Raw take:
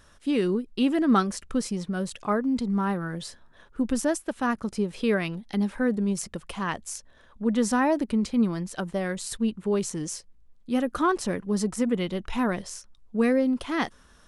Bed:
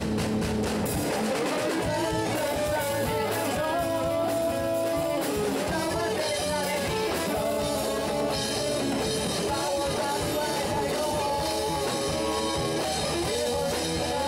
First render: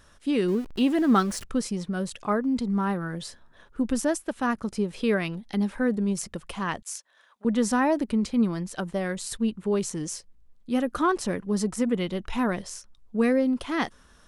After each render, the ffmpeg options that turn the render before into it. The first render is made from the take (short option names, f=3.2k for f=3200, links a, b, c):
-filter_complex "[0:a]asettb=1/sr,asplit=3[a][b][c];[a]atrim=end=0.484[d];[b]atrim=start=0.48:end=1.45,asetpts=PTS-STARTPTS,afade=t=in:d=0.004:c=qsin,afade=t=out:st=0.966:d=0.004:c=qsin,aeval=exprs='val(0)+0.5*0.0133*sgn(val(0))':c=same[e];[c]atrim=start=1.446[f];[d][e]acrossfade=d=0.004:c1=hsin:c2=qsin[g];[g][f]acrossfade=d=0.004:c1=qsin:c2=hsin,asettb=1/sr,asplit=3[h][i][j];[h]atrim=end=6.824[k];[i]atrim=start=6.82:end=7.45,asetpts=PTS-STARTPTS,afade=t=in:d=0.004:c=qsin,afade=t=out:st=0.626:d=0.004:c=qsin,highpass=890[l];[j]atrim=start=7.446[m];[k][l]acrossfade=d=0.004:c1=hsin:c2=qsin[n];[n][m]acrossfade=d=0.004:c1=qsin:c2=hsin"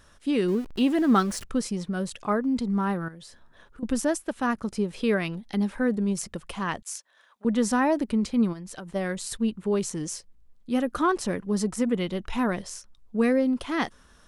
-filter_complex "[0:a]asettb=1/sr,asplit=3[a][b][c];[a]atrim=end=3.084[d];[b]atrim=start=3.08:end=3.83,asetpts=PTS-STARTPTS,afade=t=in:d=0.004:c=qsin,afade=t=out:st=0.746:d=0.004:c=qsin,acompressor=threshold=-45dB:ratio=3:attack=3.2:release=140:knee=1:detection=peak[e];[c]atrim=start=3.826[f];[d][e]acrossfade=d=0.004:c1=hsin:c2=qsin[g];[g][f]acrossfade=d=0.004:c1=qsin:c2=hsin,asplit=3[h][i][j];[h]afade=t=out:st=8.52:d=0.02[k];[i]acompressor=threshold=-35dB:ratio=6:attack=3.2:release=140:knee=1:detection=peak,afade=t=in:st=8.52:d=0.02,afade=t=out:st=8.94:d=0.02[l];[j]afade=t=in:st=8.94:d=0.02[m];[k][l][m]amix=inputs=3:normalize=0"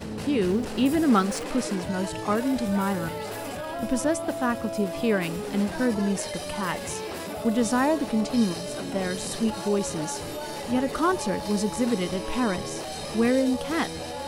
-filter_complex "[1:a]volume=-6.5dB[a];[0:a][a]amix=inputs=2:normalize=0"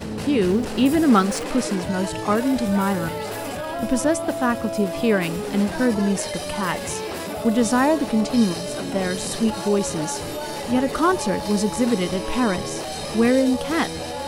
-af "volume=4.5dB"